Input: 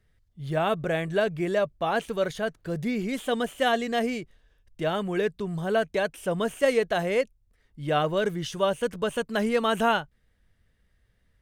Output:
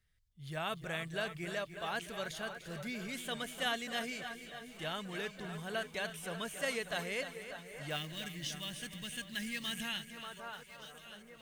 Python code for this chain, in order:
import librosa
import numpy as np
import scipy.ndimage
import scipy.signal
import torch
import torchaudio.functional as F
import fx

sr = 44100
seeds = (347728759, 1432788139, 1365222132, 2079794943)

y = fx.tone_stack(x, sr, knobs='5-5-5')
y = fx.quant_float(y, sr, bits=2, at=(7.9, 9.75))
y = fx.echo_alternate(y, sr, ms=589, hz=2000.0, feedback_pct=74, wet_db=-11.5)
y = fx.spec_box(y, sr, start_s=7.96, length_s=2.21, low_hz=350.0, high_hz=1600.0, gain_db=-14)
y = fx.echo_crushed(y, sr, ms=298, feedback_pct=55, bits=11, wet_db=-11)
y = y * librosa.db_to_amplitude(3.0)